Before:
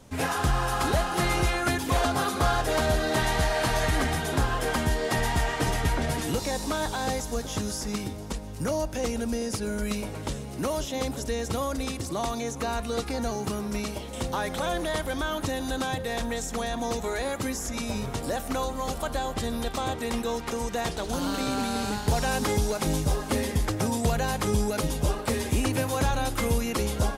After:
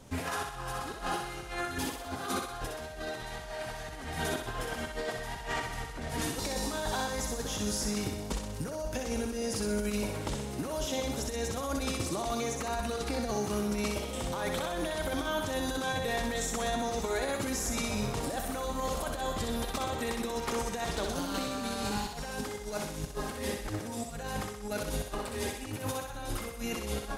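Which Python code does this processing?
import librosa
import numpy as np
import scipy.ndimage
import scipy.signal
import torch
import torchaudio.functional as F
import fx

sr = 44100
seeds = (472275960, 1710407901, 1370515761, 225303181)

y = fx.over_compress(x, sr, threshold_db=-30.0, ratio=-0.5)
y = fx.echo_thinned(y, sr, ms=63, feedback_pct=56, hz=420.0, wet_db=-4)
y = y * librosa.db_to_amplitude(-4.5)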